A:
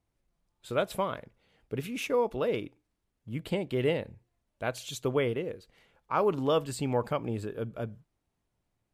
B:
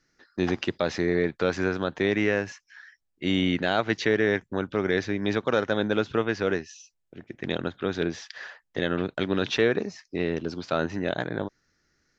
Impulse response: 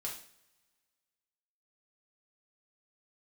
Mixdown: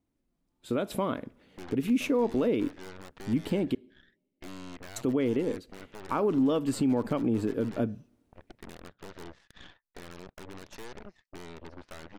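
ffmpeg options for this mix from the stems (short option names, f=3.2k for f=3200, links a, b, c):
-filter_complex "[0:a]equalizer=f=270:t=o:w=0.86:g=14.5,dynaudnorm=f=210:g=7:m=9dB,volume=-5dB,asplit=3[a][b][c];[a]atrim=end=3.75,asetpts=PTS-STARTPTS,afade=t=out:st=3.746:d=0.004:c=hsin[d];[b]atrim=start=3.75:end=4.96,asetpts=PTS-STARTPTS,volume=0[e];[c]atrim=start=4.96,asetpts=PTS-STARTPTS,afade=t=in:d=0.004:c=hsin[f];[d][e][f]concat=n=3:v=0:a=1,asplit=2[g][h];[h]volume=-19.5dB[i];[1:a]acompressor=threshold=-29dB:ratio=4,lowpass=2.2k,aeval=exprs='0.075*(cos(1*acos(clip(val(0)/0.075,-1,1)))-cos(1*PI/2))+0.0335*(cos(8*acos(clip(val(0)/0.075,-1,1)))-cos(8*PI/2))':c=same,adelay=1200,volume=-15dB[j];[2:a]atrim=start_sample=2205[k];[i][k]afir=irnorm=-1:irlink=0[l];[g][j][l]amix=inputs=3:normalize=0,alimiter=limit=-18.5dB:level=0:latency=1:release=179"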